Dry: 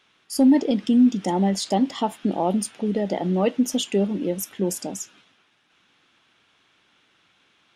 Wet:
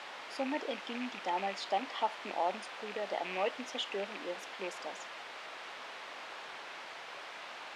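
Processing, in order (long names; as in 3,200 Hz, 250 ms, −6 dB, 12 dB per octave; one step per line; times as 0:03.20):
loose part that buzzes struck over −25 dBFS, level −24 dBFS
background noise pink −34 dBFS
flat-topped band-pass 1,500 Hz, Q 0.52
level −6 dB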